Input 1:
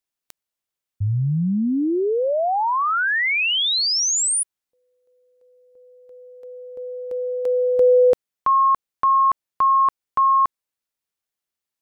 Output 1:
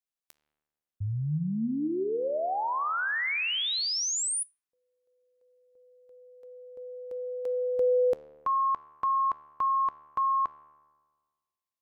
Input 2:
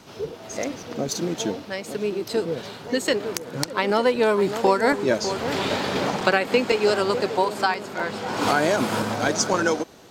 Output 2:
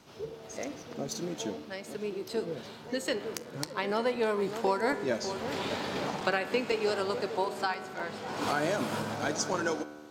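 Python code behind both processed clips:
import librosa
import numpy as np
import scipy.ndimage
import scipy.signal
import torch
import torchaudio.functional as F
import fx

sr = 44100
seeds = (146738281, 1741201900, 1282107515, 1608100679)

y = fx.comb_fb(x, sr, f0_hz=75.0, decay_s=1.6, harmonics='all', damping=0.3, mix_pct=70)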